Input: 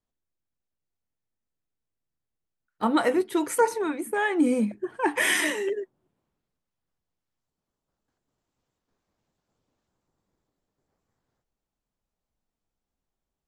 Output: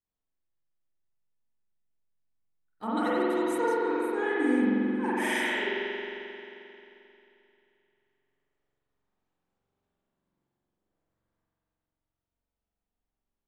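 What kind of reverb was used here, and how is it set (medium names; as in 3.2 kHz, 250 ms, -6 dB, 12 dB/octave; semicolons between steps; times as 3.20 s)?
spring tank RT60 3 s, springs 44 ms, chirp 50 ms, DRR -9 dB; trim -12.5 dB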